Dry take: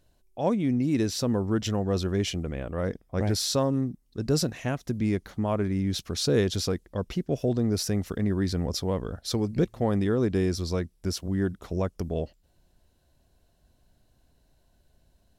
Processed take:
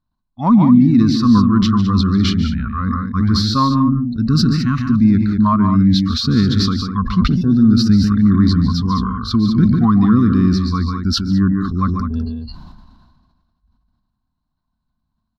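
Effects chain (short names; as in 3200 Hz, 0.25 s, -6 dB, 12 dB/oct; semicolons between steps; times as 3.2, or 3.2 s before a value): resonant high shelf 6700 Hz -10 dB, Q 1.5; in parallel at -6.5 dB: overloaded stage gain 25.5 dB; on the sum: spectral noise reduction 23 dB; EQ curve 110 Hz 0 dB, 240 Hz +7 dB, 470 Hz -22 dB, 1100 Hz +12 dB, 1700 Hz -7 dB, 2800 Hz -13 dB, 4200 Hz -4 dB, 6000 Hz -14 dB; on a send: loudspeakers at several distances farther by 50 m -9 dB, 70 m -9 dB; on the sum: sustainer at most 36 dB/s; gain +7.5 dB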